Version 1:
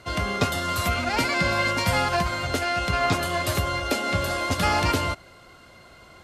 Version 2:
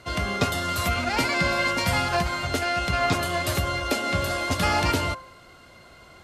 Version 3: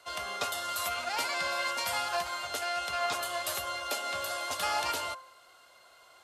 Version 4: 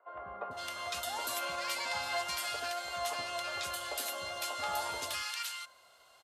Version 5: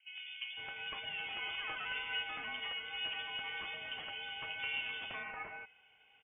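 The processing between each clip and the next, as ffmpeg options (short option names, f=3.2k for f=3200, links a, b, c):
-af "bandreject=f=104.7:t=h:w=4,bandreject=f=209.4:t=h:w=4,bandreject=f=314.1:t=h:w=4,bandreject=f=418.8:t=h:w=4,bandreject=f=523.5:t=h:w=4,bandreject=f=628.2:t=h:w=4,bandreject=f=732.9:t=h:w=4,bandreject=f=837.6:t=h:w=4,bandreject=f=942.3:t=h:w=4,bandreject=f=1.047k:t=h:w=4,bandreject=f=1.1517k:t=h:w=4,bandreject=f=1.2564k:t=h:w=4,bandreject=f=1.3611k:t=h:w=4,bandreject=f=1.4658k:t=h:w=4,bandreject=f=1.5705k:t=h:w=4,bandreject=f=1.6752k:t=h:w=4"
-filter_complex "[0:a]aexciter=amount=4.2:drive=3.6:freq=2.9k,acrossover=split=530 2000:gain=0.0708 1 0.251[a][b][c];[a][b][c]amix=inputs=3:normalize=0,volume=-5dB"
-filter_complex "[0:a]acrossover=split=350|1400[a][b][c];[a]adelay=80[d];[c]adelay=510[e];[d][b][e]amix=inputs=3:normalize=0,volume=-2.5dB"
-af "lowpass=f=3.1k:t=q:w=0.5098,lowpass=f=3.1k:t=q:w=0.6013,lowpass=f=3.1k:t=q:w=0.9,lowpass=f=3.1k:t=q:w=2.563,afreqshift=-3600,volume=-3dB"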